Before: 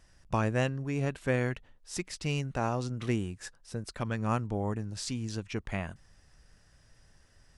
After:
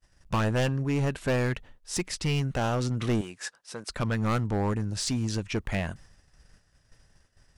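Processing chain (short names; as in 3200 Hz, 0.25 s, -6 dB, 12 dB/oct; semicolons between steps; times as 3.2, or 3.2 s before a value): overloaded stage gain 29 dB; expander -52 dBFS; 3.21–3.9 weighting filter A; gain +7 dB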